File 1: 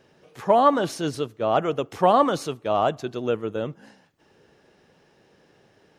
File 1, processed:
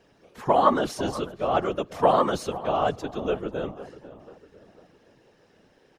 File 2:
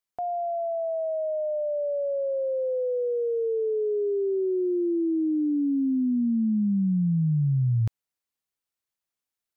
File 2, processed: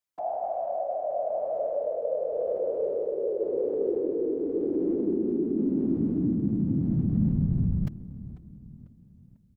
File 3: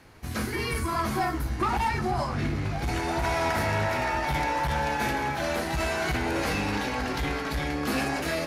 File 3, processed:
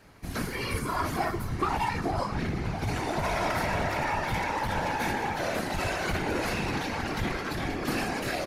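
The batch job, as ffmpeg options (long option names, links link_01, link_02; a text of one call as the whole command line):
ffmpeg -i in.wav -filter_complex "[0:a]asplit=2[link_01][link_02];[link_02]adelay=495,lowpass=frequency=2300:poles=1,volume=-16dB,asplit=2[link_03][link_04];[link_04]adelay=495,lowpass=frequency=2300:poles=1,volume=0.46,asplit=2[link_05][link_06];[link_06]adelay=495,lowpass=frequency=2300:poles=1,volume=0.46,asplit=2[link_07][link_08];[link_08]adelay=495,lowpass=frequency=2300:poles=1,volume=0.46[link_09];[link_01][link_03][link_05][link_07][link_09]amix=inputs=5:normalize=0,afftfilt=real='hypot(re,im)*cos(2*PI*random(0))':imag='hypot(re,im)*sin(2*PI*random(1))':win_size=512:overlap=0.75,volume=4dB" out.wav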